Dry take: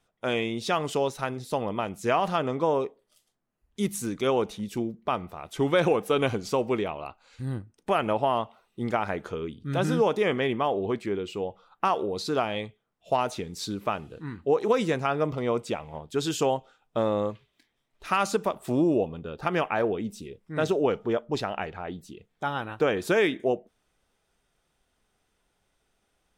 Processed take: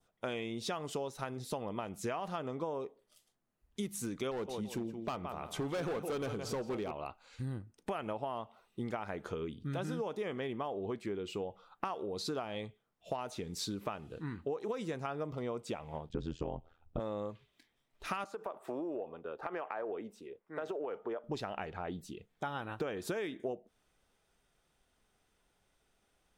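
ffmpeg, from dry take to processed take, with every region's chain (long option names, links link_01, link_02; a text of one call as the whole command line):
ffmpeg -i in.wav -filter_complex "[0:a]asettb=1/sr,asplit=3[link_01][link_02][link_03];[link_01]atrim=end=4.314[link_04];[link_02]atrim=start=4.31:end=6.92,asetpts=PTS-STARTPTS,afade=type=in:duration=0.004:curve=qsin,afade=type=out:start_time=2.606:duration=0.004:curve=qsin,asplit=2[link_05][link_06];[link_06]adelay=168,lowpass=frequency=4000:poles=1,volume=-11dB,asplit=2[link_07][link_08];[link_08]adelay=168,lowpass=frequency=4000:poles=1,volume=0.3,asplit=2[link_09][link_10];[link_10]adelay=168,lowpass=frequency=4000:poles=1,volume=0.3[link_11];[link_05][link_07][link_09][link_11]amix=inputs=4:normalize=0,atrim=end_sample=115101,volume=22.5dB,asoftclip=hard,volume=-22.5dB[link_12];[link_03]atrim=start=6.916[link_13];[link_04][link_12]acrossfade=duration=0.004:curve1=hsin:curve2=qsin[link_14];[link_14][link_13]acrossfade=duration=0.004:curve1=qsin:curve2=hsin,asettb=1/sr,asplit=3[link_15][link_16][link_17];[link_15]atrim=end=16.094[link_18];[link_16]atrim=start=16.09:end=17,asetpts=PTS-STARTPTS,afade=type=in:duration=0.004:curve=qsin,afade=type=out:start_time=0.906:duration=0.004:curve=qsin,lowpass=6600,tremolo=f=83:d=1,aemphasis=mode=reproduction:type=riaa[link_19];[link_17]atrim=start=16.996[link_20];[link_18][link_19]acrossfade=duration=0.004:curve1=hsin:curve2=qsin[link_21];[link_21][link_20]acrossfade=duration=0.004:curve1=qsin:curve2=hsin,asettb=1/sr,asplit=3[link_22][link_23][link_24];[link_22]atrim=end=18.244[link_25];[link_23]atrim=start=18.24:end=21.24,asetpts=PTS-STARTPTS,afade=type=in:duration=0.004:curve=qsin,afade=type=out:start_time=2.996:duration=0.004:curve=qsin,acrossover=split=340 2000:gain=0.0891 1 0.178[link_26][link_27][link_28];[link_26][link_27][link_28]amix=inputs=3:normalize=0,acompressor=threshold=-29dB:ratio=4:attack=3.2:release=140:knee=1:detection=peak[link_29];[link_24]atrim=start=21.236[link_30];[link_25][link_29]acrossfade=duration=0.004:curve1=hsin:curve2=qsin[link_31];[link_31][link_30]acrossfade=duration=0.004:curve1=qsin:curve2=hsin,adynamicequalizer=threshold=0.00631:dfrequency=2400:dqfactor=1.3:tfrequency=2400:tqfactor=1.3:attack=5:release=100:ratio=0.375:range=2:mode=cutabove:tftype=bell,acompressor=threshold=-33dB:ratio=6,volume=-2dB" out.wav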